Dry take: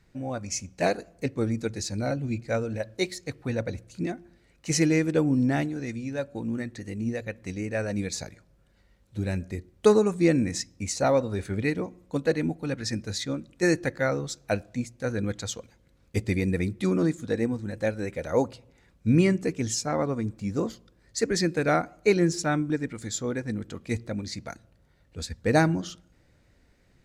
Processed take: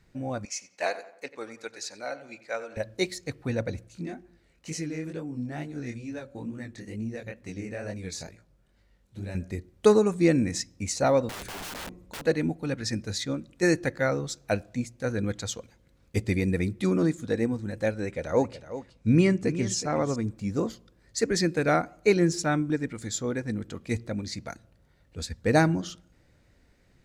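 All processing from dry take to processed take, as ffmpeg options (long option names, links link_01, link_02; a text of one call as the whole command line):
ffmpeg -i in.wav -filter_complex "[0:a]asettb=1/sr,asplit=3[link_01][link_02][link_03];[link_01]atrim=end=0.454[link_04];[link_02]atrim=start=0.45:end=2.77,asetpts=PTS-STARTPTS,afade=type=in:duration=0.004:curve=qsin,afade=type=out:start_time=2.316:duration=0.004:curve=qsin,highpass=710,highshelf=frequency=6500:gain=-8,asplit=2[link_05][link_06];[link_06]adelay=90,lowpass=frequency=2800:poles=1,volume=-14dB,asplit=2[link_07][link_08];[link_08]adelay=90,lowpass=frequency=2800:poles=1,volume=0.44,asplit=2[link_09][link_10];[link_10]adelay=90,lowpass=frequency=2800:poles=1,volume=0.44,asplit=2[link_11][link_12];[link_12]adelay=90,lowpass=frequency=2800:poles=1,volume=0.44[link_13];[link_05][link_07][link_09][link_11][link_13]amix=inputs=5:normalize=0,atrim=end_sample=102312[link_14];[link_03]atrim=start=2.766[link_15];[link_04][link_14]acrossfade=duration=0.004:curve1=hsin:curve2=qsin[link_16];[link_16][link_15]acrossfade=duration=0.004:curve1=qsin:curve2=hsin,asettb=1/sr,asplit=3[link_17][link_18][link_19];[link_17]atrim=end=3.884[link_20];[link_18]atrim=start=3.88:end=9.35,asetpts=PTS-STARTPTS,afade=type=in:duration=0.004:curve=qsin,afade=type=out:start_time=5.466:duration=0.004:curve=qsin,acompressor=threshold=-28dB:ratio=6:attack=3.2:release=140:knee=1:detection=peak,flanger=delay=17.5:depth=7.8:speed=2.2[link_21];[link_19]atrim=start=9.346[link_22];[link_20][link_21]acrossfade=duration=0.004:curve1=hsin:curve2=qsin[link_23];[link_23][link_22]acrossfade=duration=0.004:curve1=qsin:curve2=hsin,asettb=1/sr,asplit=3[link_24][link_25][link_26];[link_24]atrim=end=11.294[link_27];[link_25]atrim=start=11.29:end=12.22,asetpts=PTS-STARTPTS,afade=type=in:duration=0.004:curve=qsin,afade=type=out:start_time=0.926:duration=0.004:curve=qsin,acompressor=threshold=-28dB:ratio=2.5:attack=3.2:release=140:knee=1:detection=peak,lowshelf=frequency=160:gain=8.5,aeval=exprs='(mod(44.7*val(0)+1,2)-1)/44.7':channel_layout=same[link_28];[link_26]atrim=start=12.216[link_29];[link_27][link_28]acrossfade=duration=0.004:curve1=hsin:curve2=qsin[link_30];[link_30][link_29]acrossfade=duration=0.004:curve1=qsin:curve2=hsin,asettb=1/sr,asplit=3[link_31][link_32][link_33];[link_31]atrim=end=17.934[link_34];[link_32]atrim=start=17.93:end=20.16,asetpts=PTS-STARTPTS,afade=type=in:duration=0.004:curve=qsin,afade=type=out:start_time=2.226:duration=0.004:curve=qsin,lowpass=9100,aecho=1:1:370:0.224,atrim=end_sample=98343[link_35];[link_33]atrim=start=20.156[link_36];[link_34][link_35]acrossfade=duration=0.004:curve1=hsin:curve2=qsin[link_37];[link_37][link_36]acrossfade=duration=0.004:curve1=qsin:curve2=hsin" out.wav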